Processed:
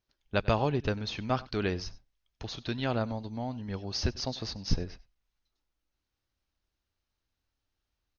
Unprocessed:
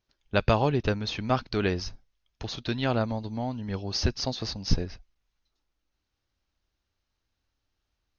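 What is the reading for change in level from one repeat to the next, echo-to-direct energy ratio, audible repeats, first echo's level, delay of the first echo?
repeats not evenly spaced, −21.0 dB, 1, −21.0 dB, 96 ms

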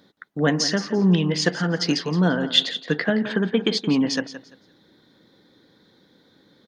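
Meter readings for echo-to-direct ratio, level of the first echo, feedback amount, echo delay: −13.0 dB, −13.0 dB, 22%, 171 ms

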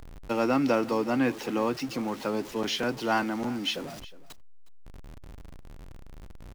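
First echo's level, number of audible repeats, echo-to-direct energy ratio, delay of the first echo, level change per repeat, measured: −19.0 dB, 1, −19.0 dB, 362 ms, repeats not evenly spaced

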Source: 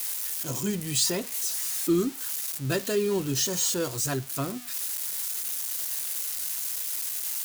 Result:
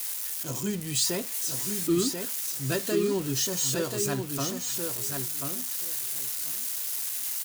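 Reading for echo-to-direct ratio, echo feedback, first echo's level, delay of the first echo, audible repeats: −5.5 dB, 16%, −5.5 dB, 1,036 ms, 2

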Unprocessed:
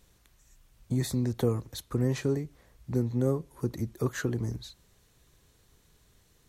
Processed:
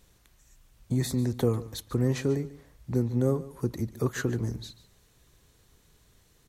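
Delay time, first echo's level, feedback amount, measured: 144 ms, −17.0 dB, 16%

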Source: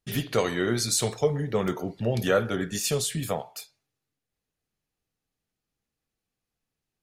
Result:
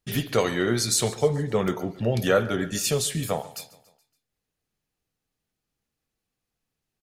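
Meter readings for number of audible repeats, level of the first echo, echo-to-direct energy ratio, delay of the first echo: 3, −19.5 dB, −18.0 dB, 141 ms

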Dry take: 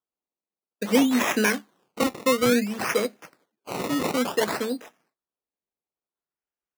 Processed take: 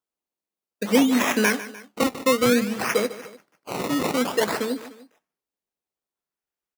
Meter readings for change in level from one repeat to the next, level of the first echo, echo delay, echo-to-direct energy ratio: −5.5 dB, −15.5 dB, 150 ms, −14.5 dB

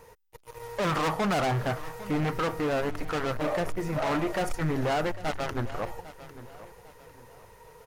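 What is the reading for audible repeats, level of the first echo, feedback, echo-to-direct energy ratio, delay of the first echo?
3, −16.0 dB, 35%, −15.5 dB, 801 ms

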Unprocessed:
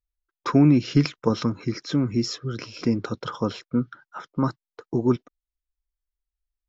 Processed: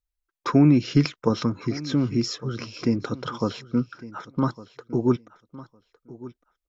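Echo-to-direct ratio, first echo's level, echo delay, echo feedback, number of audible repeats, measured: −18.0 dB, −18.0 dB, 1,157 ms, 17%, 2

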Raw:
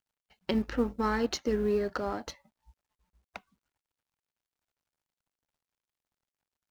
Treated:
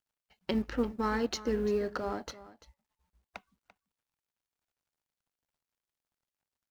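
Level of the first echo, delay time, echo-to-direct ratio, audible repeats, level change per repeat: −16.5 dB, 341 ms, −16.5 dB, 1, repeats not evenly spaced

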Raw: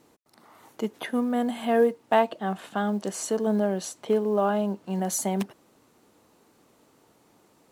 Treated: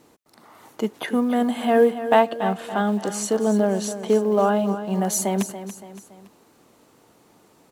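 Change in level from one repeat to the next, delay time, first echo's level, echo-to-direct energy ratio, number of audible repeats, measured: −7.0 dB, 283 ms, −11.5 dB, −10.5 dB, 3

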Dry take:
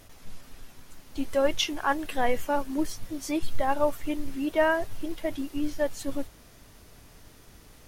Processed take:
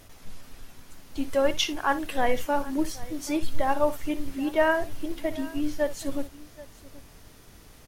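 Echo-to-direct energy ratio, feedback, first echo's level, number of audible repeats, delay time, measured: −13.5 dB, repeats not evenly spaced, −15.0 dB, 2, 60 ms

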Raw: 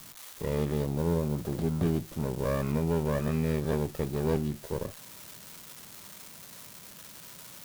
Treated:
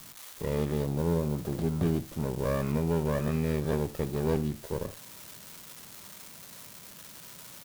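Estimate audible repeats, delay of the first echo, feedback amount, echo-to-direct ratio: 1, 78 ms, repeats not evenly spaced, −18.0 dB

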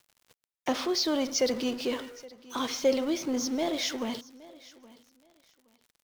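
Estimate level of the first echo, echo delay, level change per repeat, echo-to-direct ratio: −21.0 dB, 820 ms, −13.5 dB, −21.0 dB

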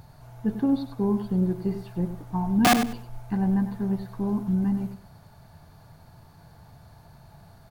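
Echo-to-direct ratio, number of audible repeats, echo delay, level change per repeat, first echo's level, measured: −10.5 dB, 2, 98 ms, −14.0 dB, −10.5 dB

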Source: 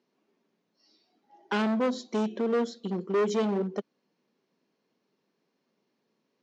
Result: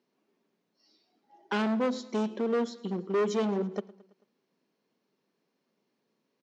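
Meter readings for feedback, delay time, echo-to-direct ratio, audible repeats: 58%, 110 ms, −20.0 dB, 3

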